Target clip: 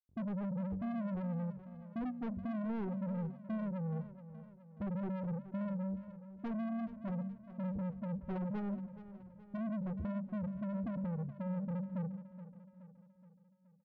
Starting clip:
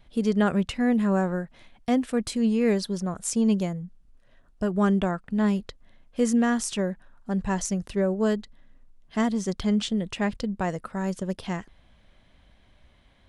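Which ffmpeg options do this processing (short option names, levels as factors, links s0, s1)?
-filter_complex "[0:a]aemphasis=mode=reproduction:type=riaa,afftfilt=real='re*gte(hypot(re,im),0.708)':imag='im*gte(hypot(re,im),0.708)':win_size=1024:overlap=0.75,highpass=f=88:w=0.5412,highpass=f=88:w=1.3066,highshelf=f=2800:g=10.5,bandreject=f=50:t=h:w=6,bandreject=f=100:t=h:w=6,bandreject=f=150:t=h:w=6,bandreject=f=200:t=h:w=6,bandreject=f=250:t=h:w=6,acompressor=threshold=0.0501:ratio=10,asoftclip=type=tanh:threshold=0.02,flanger=delay=1.4:depth=8.8:regen=61:speed=1.5:shape=sinusoidal,aeval=exprs='0.02*sin(PI/2*1.78*val(0)/0.02)':c=same,adynamicsmooth=sensitivity=2.5:basefreq=950,asplit=2[s0][s1];[s1]aecho=0:1:406|812|1218|1624|2030:0.2|0.104|0.054|0.0281|0.0146[s2];[s0][s2]amix=inputs=2:normalize=0,asetrate=42336,aresample=44100,volume=0.841"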